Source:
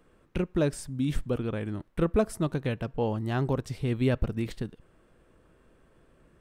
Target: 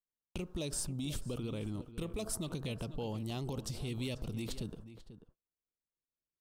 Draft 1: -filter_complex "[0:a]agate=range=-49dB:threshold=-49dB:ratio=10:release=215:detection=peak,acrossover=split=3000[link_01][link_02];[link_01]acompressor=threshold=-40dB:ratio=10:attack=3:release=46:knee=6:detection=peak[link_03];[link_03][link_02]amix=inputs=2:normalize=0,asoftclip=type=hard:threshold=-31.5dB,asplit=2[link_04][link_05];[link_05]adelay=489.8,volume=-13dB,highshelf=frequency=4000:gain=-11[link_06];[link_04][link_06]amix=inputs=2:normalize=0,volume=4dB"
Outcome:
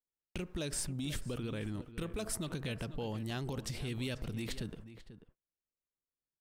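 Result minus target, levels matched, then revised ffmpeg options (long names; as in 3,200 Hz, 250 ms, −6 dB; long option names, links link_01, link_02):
2,000 Hz band +5.0 dB
-filter_complex "[0:a]agate=range=-49dB:threshold=-49dB:ratio=10:release=215:detection=peak,acrossover=split=3000[link_01][link_02];[link_01]acompressor=threshold=-40dB:ratio=10:attack=3:release=46:knee=6:detection=peak,lowpass=frequency=1500:width=0.5412,lowpass=frequency=1500:width=1.3066[link_03];[link_03][link_02]amix=inputs=2:normalize=0,asoftclip=type=hard:threshold=-31.5dB,asplit=2[link_04][link_05];[link_05]adelay=489.8,volume=-13dB,highshelf=frequency=4000:gain=-11[link_06];[link_04][link_06]amix=inputs=2:normalize=0,volume=4dB"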